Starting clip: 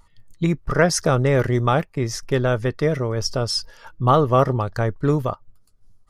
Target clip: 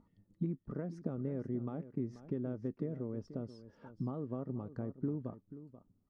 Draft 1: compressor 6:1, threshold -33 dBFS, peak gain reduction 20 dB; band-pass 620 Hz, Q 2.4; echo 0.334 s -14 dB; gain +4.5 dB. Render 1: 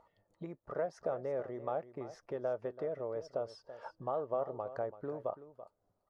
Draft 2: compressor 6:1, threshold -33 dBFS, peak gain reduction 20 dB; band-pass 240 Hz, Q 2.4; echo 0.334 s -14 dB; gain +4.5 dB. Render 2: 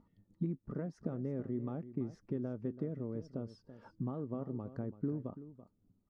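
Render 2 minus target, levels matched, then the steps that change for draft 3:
echo 0.151 s early
change: echo 0.485 s -14 dB

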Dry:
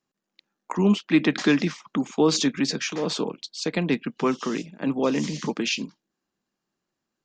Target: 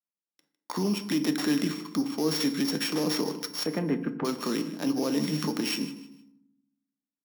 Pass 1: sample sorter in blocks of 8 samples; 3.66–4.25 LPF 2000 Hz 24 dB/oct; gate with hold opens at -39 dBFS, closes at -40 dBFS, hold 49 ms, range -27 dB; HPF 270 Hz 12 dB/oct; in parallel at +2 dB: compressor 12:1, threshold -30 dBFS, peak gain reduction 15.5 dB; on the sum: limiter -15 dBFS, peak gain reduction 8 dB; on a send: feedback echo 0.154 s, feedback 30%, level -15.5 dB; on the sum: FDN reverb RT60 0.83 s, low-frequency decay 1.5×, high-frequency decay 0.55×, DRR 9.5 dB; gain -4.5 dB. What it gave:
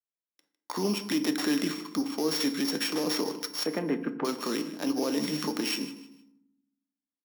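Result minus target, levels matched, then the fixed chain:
125 Hz band -5.5 dB
sample sorter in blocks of 8 samples; 3.66–4.25 LPF 2000 Hz 24 dB/oct; gate with hold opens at -39 dBFS, closes at -40 dBFS, hold 49 ms, range -27 dB; HPF 120 Hz 12 dB/oct; in parallel at +2 dB: compressor 12:1, threshold -30 dBFS, peak gain reduction 17 dB; on the sum: limiter -15 dBFS, peak gain reduction 9 dB; on a send: feedback echo 0.154 s, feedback 30%, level -15.5 dB; on the sum: FDN reverb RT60 0.83 s, low-frequency decay 1.5×, high-frequency decay 0.55×, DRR 9.5 dB; gain -4.5 dB

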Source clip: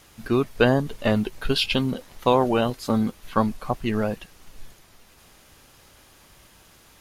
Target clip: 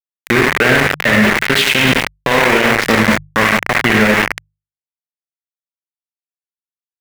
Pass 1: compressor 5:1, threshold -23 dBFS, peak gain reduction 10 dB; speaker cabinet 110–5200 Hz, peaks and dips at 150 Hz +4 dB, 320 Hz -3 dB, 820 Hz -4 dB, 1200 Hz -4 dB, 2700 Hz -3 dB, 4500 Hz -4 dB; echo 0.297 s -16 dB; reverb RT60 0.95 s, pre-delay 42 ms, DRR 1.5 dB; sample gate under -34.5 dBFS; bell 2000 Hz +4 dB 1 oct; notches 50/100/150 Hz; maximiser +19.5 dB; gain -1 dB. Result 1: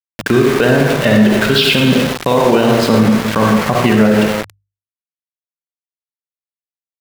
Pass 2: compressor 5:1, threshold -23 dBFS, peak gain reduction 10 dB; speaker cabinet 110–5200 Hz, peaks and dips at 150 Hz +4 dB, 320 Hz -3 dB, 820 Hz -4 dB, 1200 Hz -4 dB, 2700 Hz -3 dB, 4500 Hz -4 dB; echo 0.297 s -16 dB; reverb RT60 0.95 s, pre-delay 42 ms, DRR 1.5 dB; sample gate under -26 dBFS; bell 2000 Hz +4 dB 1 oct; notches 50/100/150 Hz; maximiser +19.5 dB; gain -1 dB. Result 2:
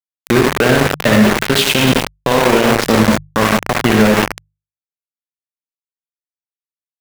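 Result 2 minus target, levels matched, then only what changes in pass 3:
2000 Hz band -5.0 dB
change: bell 2000 Hz +15.5 dB 1 oct

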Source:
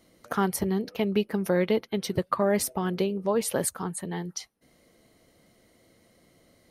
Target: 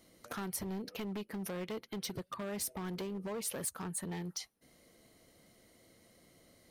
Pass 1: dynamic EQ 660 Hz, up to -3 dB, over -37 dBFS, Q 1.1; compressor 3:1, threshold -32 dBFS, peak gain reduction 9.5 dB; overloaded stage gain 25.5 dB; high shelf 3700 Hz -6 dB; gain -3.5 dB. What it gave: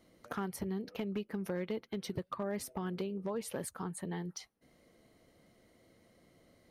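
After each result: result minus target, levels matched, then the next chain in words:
overloaded stage: distortion -12 dB; 8000 Hz band -7.5 dB
dynamic EQ 660 Hz, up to -3 dB, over -37 dBFS, Q 1.1; compressor 3:1, threshold -32 dBFS, peak gain reduction 9.5 dB; overloaded stage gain 32.5 dB; high shelf 3700 Hz -6 dB; gain -3.5 dB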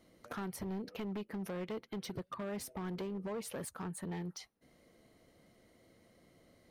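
8000 Hz band -7.0 dB
dynamic EQ 660 Hz, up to -3 dB, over -37 dBFS, Q 1.1; compressor 3:1, threshold -32 dBFS, peak gain reduction 9.5 dB; overloaded stage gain 32.5 dB; high shelf 3700 Hz +4.5 dB; gain -3.5 dB

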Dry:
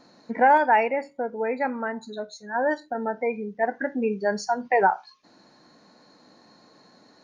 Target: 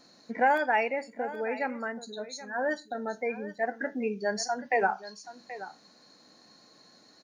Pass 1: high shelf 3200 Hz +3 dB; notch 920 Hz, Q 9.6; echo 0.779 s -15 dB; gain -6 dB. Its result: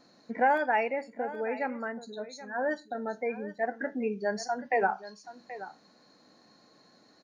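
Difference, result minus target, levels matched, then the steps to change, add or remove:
8000 Hz band -6.5 dB
change: high shelf 3200 Hz +12 dB

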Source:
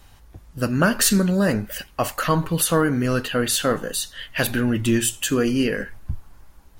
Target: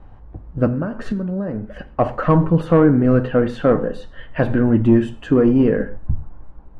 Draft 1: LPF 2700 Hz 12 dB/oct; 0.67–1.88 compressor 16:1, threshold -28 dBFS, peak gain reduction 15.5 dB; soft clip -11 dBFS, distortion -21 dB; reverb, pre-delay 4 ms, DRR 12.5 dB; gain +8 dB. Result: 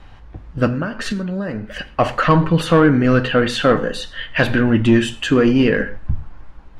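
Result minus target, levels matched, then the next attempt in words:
2000 Hz band +9.5 dB
LPF 890 Hz 12 dB/oct; 0.67–1.88 compressor 16:1, threshold -28 dBFS, peak gain reduction 14.5 dB; soft clip -11 dBFS, distortion -23 dB; reverb, pre-delay 4 ms, DRR 12.5 dB; gain +8 dB

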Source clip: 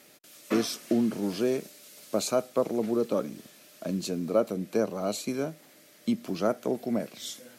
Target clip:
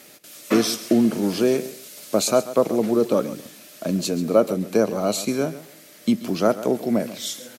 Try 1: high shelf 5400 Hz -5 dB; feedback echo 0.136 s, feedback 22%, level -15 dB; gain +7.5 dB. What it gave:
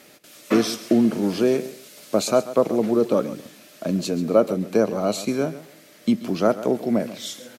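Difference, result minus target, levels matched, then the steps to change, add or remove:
8000 Hz band -4.5 dB
change: high shelf 5400 Hz +2.5 dB

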